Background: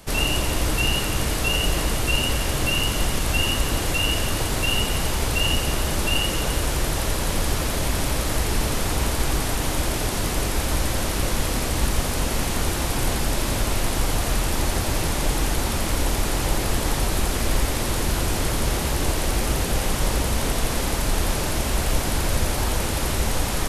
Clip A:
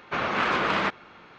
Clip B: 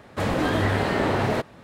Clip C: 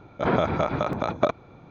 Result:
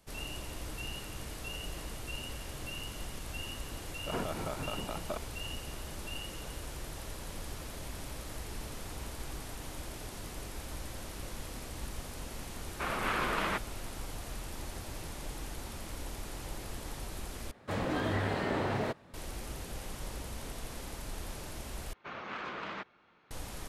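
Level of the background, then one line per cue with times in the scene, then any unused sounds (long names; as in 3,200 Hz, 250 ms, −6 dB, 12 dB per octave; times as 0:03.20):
background −19 dB
0:03.87: mix in C −12.5 dB + brickwall limiter −12.5 dBFS
0:12.68: mix in A −8 dB
0:17.51: overwrite with B −9.5 dB
0:21.93: overwrite with A −16 dB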